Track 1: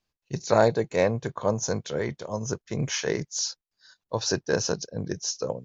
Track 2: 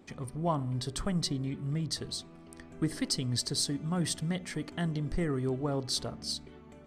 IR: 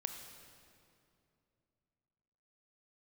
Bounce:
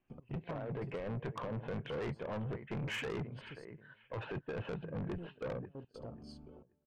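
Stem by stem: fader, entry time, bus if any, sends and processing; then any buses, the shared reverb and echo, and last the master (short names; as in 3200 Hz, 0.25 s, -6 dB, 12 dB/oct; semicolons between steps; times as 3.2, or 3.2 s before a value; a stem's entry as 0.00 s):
-3.5 dB, 0.00 s, no send, echo send -19 dB, steep low-pass 3000 Hz 72 dB/oct; negative-ratio compressor -29 dBFS, ratio -1
-4.0 dB, 0.00 s, muted 3.65–4.83, no send, no echo send, step gate ".x.x.xxxxxxx.." 154 bpm -24 dB; running mean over 23 samples; auto duck -11 dB, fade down 1.25 s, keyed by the first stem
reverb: off
echo: feedback echo 0.533 s, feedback 22%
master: soft clip -35 dBFS, distortion -6 dB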